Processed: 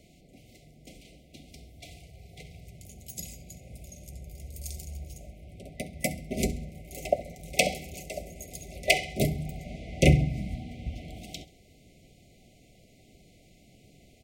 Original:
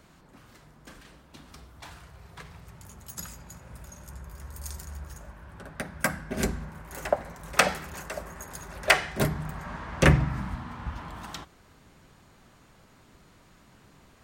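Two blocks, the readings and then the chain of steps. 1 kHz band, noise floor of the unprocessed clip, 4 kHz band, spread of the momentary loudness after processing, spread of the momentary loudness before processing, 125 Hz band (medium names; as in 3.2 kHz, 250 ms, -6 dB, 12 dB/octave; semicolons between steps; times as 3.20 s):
-6.0 dB, -58 dBFS, 0.0 dB, 23 LU, 23 LU, +0.5 dB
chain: FFT band-reject 770–2000 Hz; on a send: feedback delay 67 ms, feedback 35%, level -18.5 dB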